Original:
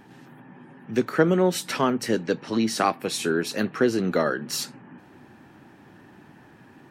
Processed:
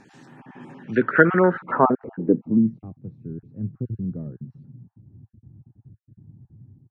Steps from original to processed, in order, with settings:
time-frequency cells dropped at random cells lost 22%
0:00.95–0:02.18: drawn EQ curve 550 Hz 0 dB, 790 Hz −3 dB, 1,500 Hz +8 dB, 5,500 Hz −29 dB
automatic gain control gain up to 8 dB
low-pass filter sweep 7,200 Hz → 110 Hz, 0:00.71–0:02.86
level −1 dB

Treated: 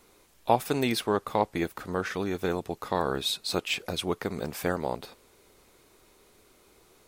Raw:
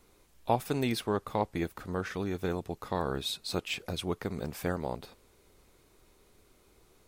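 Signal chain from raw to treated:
low-shelf EQ 160 Hz −9.5 dB
level +5.5 dB

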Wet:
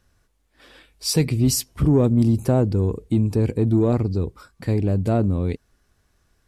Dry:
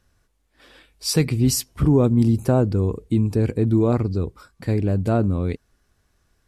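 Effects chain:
dynamic equaliser 1,400 Hz, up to −5 dB, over −41 dBFS, Q 1.4
in parallel at −8 dB: soft clipping −17 dBFS, distortion −12 dB
on the sum: level −2 dB

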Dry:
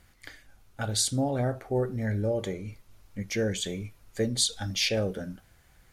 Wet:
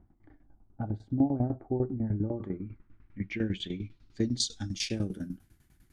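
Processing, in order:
low-pass filter sweep 770 Hz → 12,000 Hz, 0:01.92–0:05.33
shaped tremolo saw down 10 Hz, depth 85%
low shelf with overshoot 400 Hz +7.5 dB, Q 3
level −6 dB

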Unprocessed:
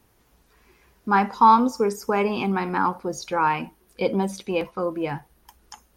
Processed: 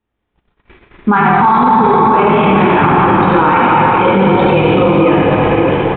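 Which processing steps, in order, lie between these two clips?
downsampling to 8,000 Hz
on a send: echo with shifted repeats 92 ms, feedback 40%, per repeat −41 Hz, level −4 dB
on the sum: dense smooth reverb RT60 4 s, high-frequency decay 0.9×, DRR −6.5 dB
noise gate −48 dBFS, range −31 dB
boost into a limiter +16 dB
level −1 dB

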